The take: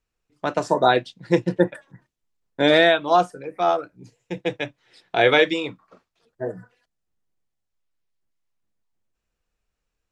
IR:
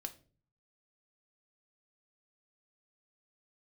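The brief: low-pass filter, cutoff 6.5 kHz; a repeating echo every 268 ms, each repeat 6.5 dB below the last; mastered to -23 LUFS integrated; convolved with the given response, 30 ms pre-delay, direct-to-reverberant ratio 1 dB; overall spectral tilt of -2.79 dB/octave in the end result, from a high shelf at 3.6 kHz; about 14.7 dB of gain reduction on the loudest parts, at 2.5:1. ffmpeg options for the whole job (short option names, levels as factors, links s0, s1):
-filter_complex "[0:a]lowpass=6500,highshelf=f=3600:g=5.5,acompressor=threshold=0.02:ratio=2.5,aecho=1:1:268|536|804|1072|1340|1608:0.473|0.222|0.105|0.0491|0.0231|0.0109,asplit=2[s0][s1];[1:a]atrim=start_sample=2205,adelay=30[s2];[s1][s2]afir=irnorm=-1:irlink=0,volume=1.26[s3];[s0][s3]amix=inputs=2:normalize=0,volume=2.51"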